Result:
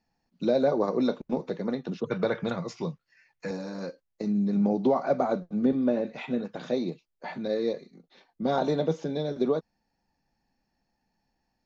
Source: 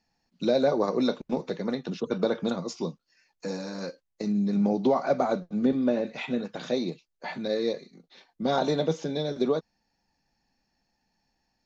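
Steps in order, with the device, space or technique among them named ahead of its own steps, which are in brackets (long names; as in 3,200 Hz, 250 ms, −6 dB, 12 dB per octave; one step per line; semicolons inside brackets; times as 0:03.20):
behind a face mask (high-shelf EQ 2,200 Hz −8 dB)
0:02.04–0:03.51: graphic EQ with 10 bands 125 Hz +10 dB, 250 Hz −7 dB, 2,000 Hz +11 dB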